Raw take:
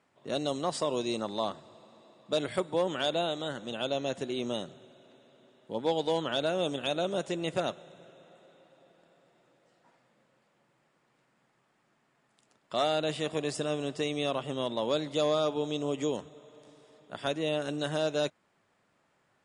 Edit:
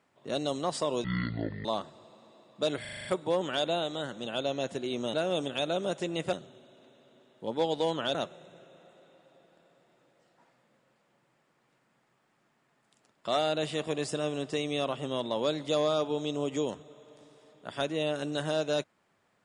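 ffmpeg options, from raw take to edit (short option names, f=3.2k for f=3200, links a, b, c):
-filter_complex "[0:a]asplit=12[a][b][c][d][e][f][g][h][i][j][k][l];[a]atrim=end=1.044[m];[b]atrim=start=1.04:end=1.35,asetpts=PTS-STARTPTS,asetrate=22491,aresample=44100[n];[c]atrim=start=1.346:end=2.552[o];[d]atrim=start=2.508:end=2.552[p];[e]atrim=start=2.508:end=2.552[q];[f]atrim=start=2.508:end=2.552[r];[g]atrim=start=2.508:end=2.552[s];[h]atrim=start=2.508:end=2.552[t];[i]atrim=start=2.508:end=4.602[u];[j]atrim=start=6.418:end=7.612[v];[k]atrim=start=4.598:end=6.422[w];[l]atrim=start=7.608[x];[m][n]acrossfade=d=0.004:c1=hsin:c2=hsin[y];[y][o]acrossfade=d=0.004:c1=hsin:c2=hsin[z];[z][p]acrossfade=d=0.004:c1=hsin:c2=hsin[aa];[aa][q]acrossfade=d=0.004:c1=hsin:c2=hsin[ab];[ab][r]acrossfade=d=0.004:c1=hsin:c2=hsin[ac];[ac][s]acrossfade=d=0.004:c1=hsin:c2=hsin[ad];[ad][t]acrossfade=d=0.004:c1=hsin:c2=hsin[ae];[ae][u]acrossfade=d=0.004:c1=hsin:c2=hsin[af];[af][v]acrossfade=d=0.004:c1=hsin:c2=hsin[ag];[ag][w]acrossfade=d=0.004:c1=hsin:c2=hsin[ah];[ah][x]acrossfade=d=0.004:c1=hsin:c2=hsin"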